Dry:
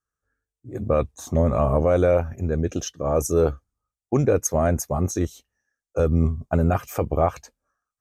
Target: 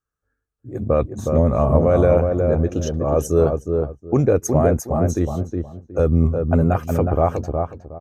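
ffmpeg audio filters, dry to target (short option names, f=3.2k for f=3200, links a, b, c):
-filter_complex "[0:a]tiltshelf=f=1.5k:g=3.5,asplit=2[a][b];[b]adelay=365,lowpass=f=1.2k:p=1,volume=-4dB,asplit=2[c][d];[d]adelay=365,lowpass=f=1.2k:p=1,volume=0.24,asplit=2[e][f];[f]adelay=365,lowpass=f=1.2k:p=1,volume=0.24[g];[a][c][e][g]amix=inputs=4:normalize=0"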